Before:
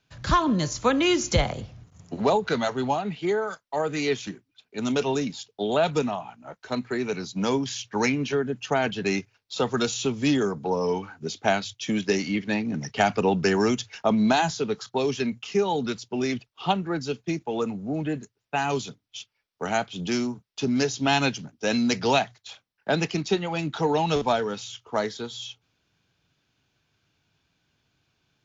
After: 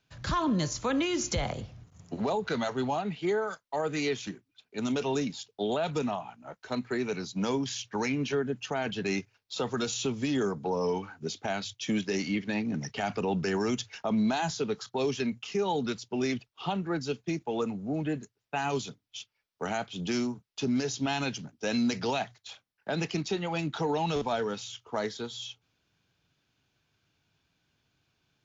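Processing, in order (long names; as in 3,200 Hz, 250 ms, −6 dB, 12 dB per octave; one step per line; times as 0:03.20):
brickwall limiter −17.5 dBFS, peak gain reduction 11 dB
level −3 dB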